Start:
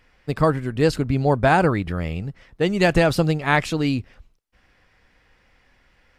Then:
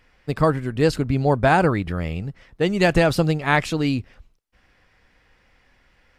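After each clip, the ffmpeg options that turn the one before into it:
-af anull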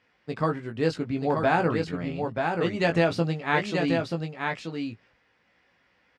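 -filter_complex "[0:a]highpass=140,lowpass=5700,asplit=2[s0][s1];[s1]adelay=18,volume=0.531[s2];[s0][s2]amix=inputs=2:normalize=0,aecho=1:1:932:0.596,volume=0.447"

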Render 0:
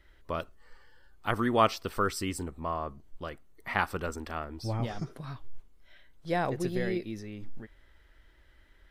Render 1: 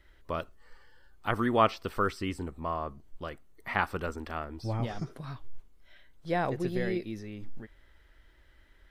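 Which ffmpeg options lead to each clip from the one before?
-filter_complex "[0:a]acrossover=split=3900[s0][s1];[s1]acompressor=threshold=0.00224:ratio=4:attack=1:release=60[s2];[s0][s2]amix=inputs=2:normalize=0"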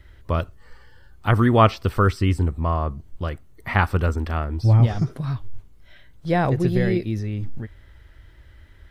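-af "equalizer=f=91:w=0.86:g=14,volume=2.24"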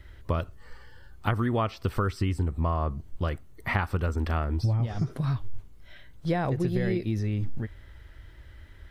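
-af "acompressor=threshold=0.0794:ratio=16"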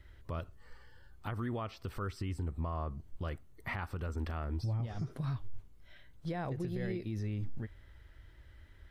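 -af "alimiter=limit=0.1:level=0:latency=1:release=50,volume=0.398"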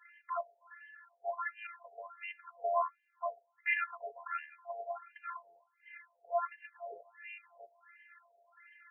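-af "afftfilt=real='hypot(re,im)*cos(PI*b)':imag='0':win_size=512:overlap=0.75,afftfilt=real='re*between(b*sr/1024,600*pow(2200/600,0.5+0.5*sin(2*PI*1.4*pts/sr))/1.41,600*pow(2200/600,0.5+0.5*sin(2*PI*1.4*pts/sr))*1.41)':imag='im*between(b*sr/1024,600*pow(2200/600,0.5+0.5*sin(2*PI*1.4*pts/sr))/1.41,600*pow(2200/600,0.5+0.5*sin(2*PI*1.4*pts/sr))*1.41)':win_size=1024:overlap=0.75,volume=5.31"

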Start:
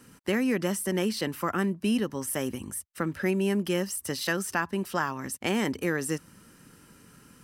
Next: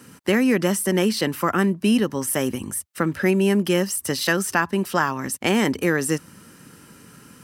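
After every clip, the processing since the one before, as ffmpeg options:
-af "highpass=76,volume=2.37"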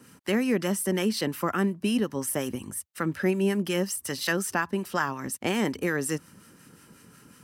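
-filter_complex "[0:a]acrossover=split=960[s0][s1];[s0]aeval=exprs='val(0)*(1-0.5/2+0.5/2*cos(2*PI*5.5*n/s))':c=same[s2];[s1]aeval=exprs='val(0)*(1-0.5/2-0.5/2*cos(2*PI*5.5*n/s))':c=same[s3];[s2][s3]amix=inputs=2:normalize=0,volume=0.631"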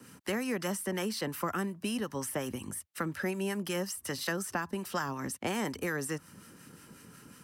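-filter_complex "[0:a]acrossover=split=140|650|1800|4000[s0][s1][s2][s3][s4];[s0]acompressor=threshold=0.00631:ratio=4[s5];[s1]acompressor=threshold=0.0141:ratio=4[s6];[s2]acompressor=threshold=0.02:ratio=4[s7];[s3]acompressor=threshold=0.00355:ratio=4[s8];[s4]acompressor=threshold=0.0112:ratio=4[s9];[s5][s6][s7][s8][s9]amix=inputs=5:normalize=0"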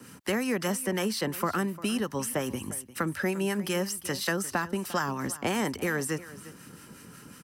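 -af "aecho=1:1:350:0.141,volume=1.68"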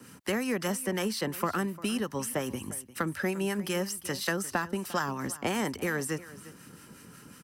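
-af "aeval=exprs='0.2*(cos(1*acos(clip(val(0)/0.2,-1,1)))-cos(1*PI/2))+0.02*(cos(3*acos(clip(val(0)/0.2,-1,1)))-cos(3*PI/2))':c=same,volume=1.12"

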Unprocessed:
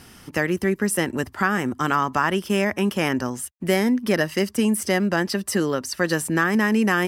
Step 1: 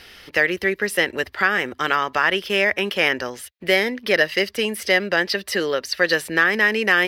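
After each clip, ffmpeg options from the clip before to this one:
-af "equalizer=f=125:t=o:w=1:g=-10,equalizer=f=250:t=o:w=1:g=-9,equalizer=f=500:t=o:w=1:g=7,equalizer=f=1000:t=o:w=1:g=-5,equalizer=f=2000:t=o:w=1:g=8,equalizer=f=4000:t=o:w=1:g=11,equalizer=f=8000:t=o:w=1:g=-10"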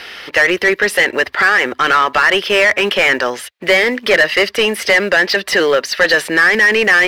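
-filter_complex "[0:a]acrusher=bits=7:mode=log:mix=0:aa=0.000001,asplit=2[s0][s1];[s1]highpass=f=720:p=1,volume=11.2,asoftclip=type=tanh:threshold=0.75[s2];[s0][s2]amix=inputs=2:normalize=0,lowpass=f=2400:p=1,volume=0.501,volume=1.19"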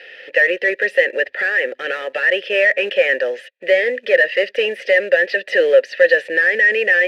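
-filter_complex "[0:a]dynaudnorm=f=130:g=3:m=2,acrusher=bits=4:mode=log:mix=0:aa=0.000001,asplit=3[s0][s1][s2];[s0]bandpass=f=530:t=q:w=8,volume=1[s3];[s1]bandpass=f=1840:t=q:w=8,volume=0.501[s4];[s2]bandpass=f=2480:t=q:w=8,volume=0.355[s5];[s3][s4][s5]amix=inputs=3:normalize=0,volume=1.5"

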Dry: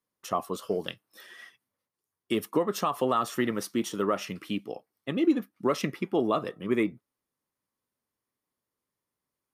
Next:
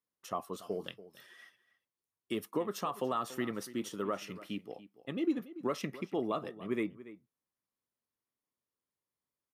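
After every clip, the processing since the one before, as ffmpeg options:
-filter_complex "[0:a]asplit=2[s0][s1];[s1]adelay=285.7,volume=0.158,highshelf=f=4000:g=-6.43[s2];[s0][s2]amix=inputs=2:normalize=0,volume=0.398"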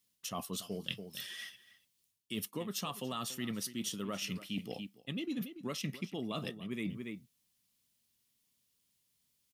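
-af "firequalizer=gain_entry='entry(210,0);entry(330,-10);entry(1200,-11);entry(2900,4)':delay=0.05:min_phase=1,areverse,acompressor=threshold=0.00355:ratio=6,areverse,volume=4.47"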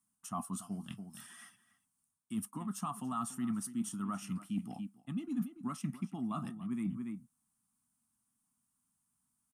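-af "firequalizer=gain_entry='entry(100,0);entry(240,8);entry(480,-22);entry(720,4);entry(1300,7);entry(1900,-8);entry(3900,-16);entry(9000,6);entry(13000,-9)':delay=0.05:min_phase=1,volume=0.75"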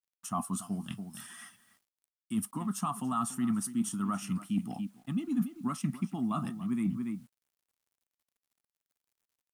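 -af "acrusher=bits=11:mix=0:aa=0.000001,volume=1.88"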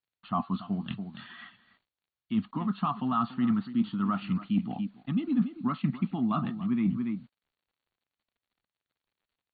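-af "volume=1.58" -ar 32000 -c:a ac3 -b:a 32k

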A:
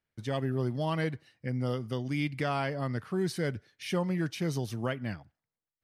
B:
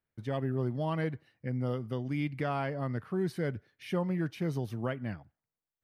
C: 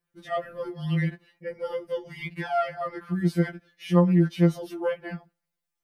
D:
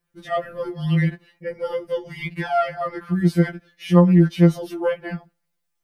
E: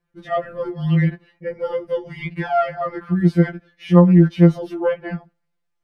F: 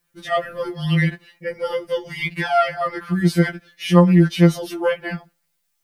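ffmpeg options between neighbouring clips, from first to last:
-af "equalizer=f=6700:w=0.51:g=-11.5,volume=0.891"
-af "afftfilt=real='re*2.83*eq(mod(b,8),0)':imag='im*2.83*eq(mod(b,8),0)':win_size=2048:overlap=0.75,volume=2.51"
-af "lowshelf=f=86:g=6,volume=1.78"
-af "aemphasis=mode=reproduction:type=75kf,volume=1.33"
-af "crystalizer=i=8.5:c=0,volume=0.794"

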